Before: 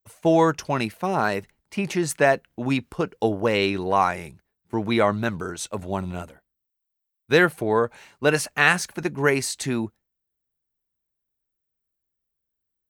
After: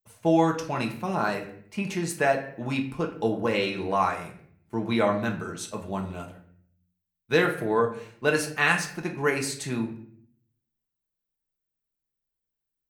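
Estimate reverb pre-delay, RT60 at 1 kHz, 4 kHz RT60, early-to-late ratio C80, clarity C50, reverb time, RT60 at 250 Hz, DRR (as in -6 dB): 5 ms, 0.55 s, 0.45 s, 13.5 dB, 10.0 dB, 0.60 s, 0.85 s, 1.5 dB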